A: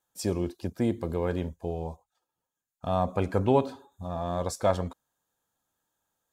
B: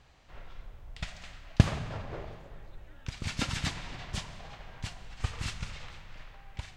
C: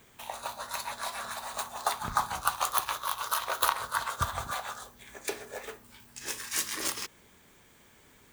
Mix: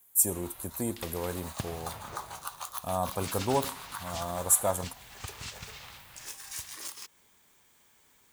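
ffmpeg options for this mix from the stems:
-filter_complex "[0:a]aexciter=amount=14.6:drive=9.6:freq=7600,volume=0.447[s0];[1:a]agate=range=0.0224:threshold=0.00501:ratio=3:detection=peak,highpass=63,volume=0.562[s1];[2:a]volume=0.251,afade=t=in:st=1.12:d=0.45:silence=0.298538[s2];[s1][s2]amix=inputs=2:normalize=0,highshelf=f=2700:g=11.5,acompressor=threshold=0.00891:ratio=2,volume=1[s3];[s0][s3]amix=inputs=2:normalize=0,equalizer=f=920:t=o:w=1:g=5.5"

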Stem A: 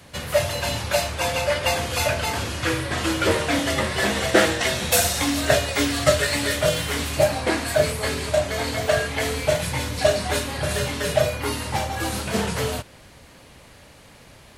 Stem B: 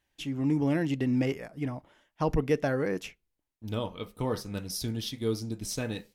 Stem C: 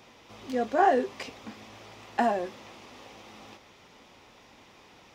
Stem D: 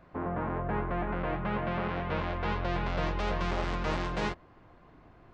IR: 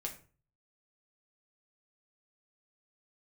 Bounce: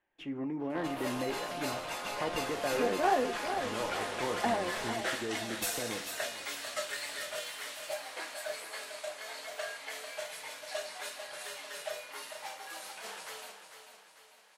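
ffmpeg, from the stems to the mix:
-filter_complex "[0:a]highpass=770,adelay=700,volume=0.178,asplit=2[s0][s1];[s1]volume=0.355[s2];[1:a]alimiter=level_in=1.12:limit=0.0631:level=0:latency=1:release=33,volume=0.891,acrossover=split=280 2300:gain=0.178 1 0.0708[s3][s4][s5];[s3][s4][s5]amix=inputs=3:normalize=0,volume=0.841,asplit=3[s6][s7][s8];[s7]volume=0.562[s9];[s8]volume=0.15[s10];[2:a]adelay=2250,volume=0.501,asplit=2[s11][s12];[s12]volume=0.398[s13];[3:a]highpass=f=470:w=0.5412,highpass=f=470:w=1.3066,acompressor=threshold=0.01:ratio=2,aeval=exprs='0.0398*sin(PI/2*2.82*val(0)/0.0398)':c=same,adelay=600,volume=0.224,asplit=2[s14][s15];[s15]volume=0.708[s16];[4:a]atrim=start_sample=2205[s17];[s9][s16]amix=inputs=2:normalize=0[s18];[s18][s17]afir=irnorm=-1:irlink=0[s19];[s2][s10][s13]amix=inputs=3:normalize=0,aecho=0:1:446|892|1338|1784|2230|2676|3122:1|0.47|0.221|0.104|0.0488|0.0229|0.0108[s20];[s0][s6][s11][s14][s19][s20]amix=inputs=6:normalize=0"

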